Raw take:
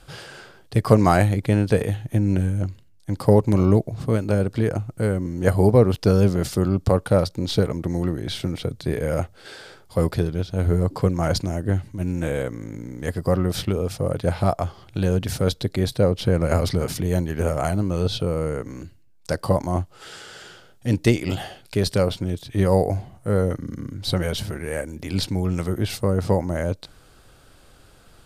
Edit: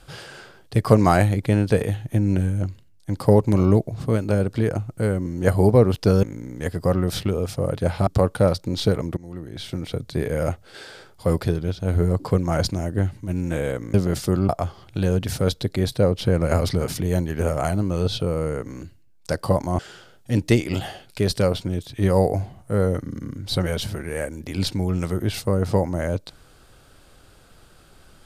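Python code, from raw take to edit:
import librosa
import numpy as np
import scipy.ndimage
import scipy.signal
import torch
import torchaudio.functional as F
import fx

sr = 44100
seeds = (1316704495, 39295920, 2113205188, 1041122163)

y = fx.edit(x, sr, fx.swap(start_s=6.23, length_s=0.55, other_s=12.65, other_length_s=1.84),
    fx.fade_in_from(start_s=7.88, length_s=0.88, floor_db=-21.5),
    fx.cut(start_s=19.79, length_s=0.56), tone=tone)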